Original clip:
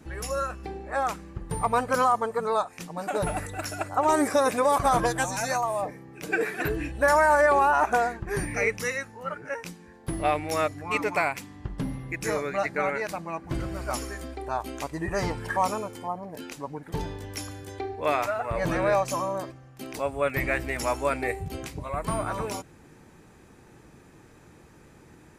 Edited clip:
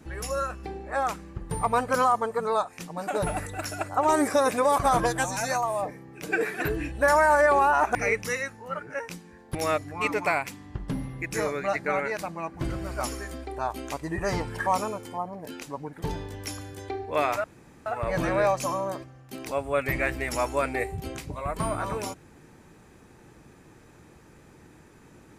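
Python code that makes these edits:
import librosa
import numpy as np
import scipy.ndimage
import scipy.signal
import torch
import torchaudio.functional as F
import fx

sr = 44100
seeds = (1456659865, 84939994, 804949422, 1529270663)

y = fx.edit(x, sr, fx.cut(start_s=7.95, length_s=0.55),
    fx.cut(start_s=10.1, length_s=0.35),
    fx.insert_room_tone(at_s=18.34, length_s=0.42), tone=tone)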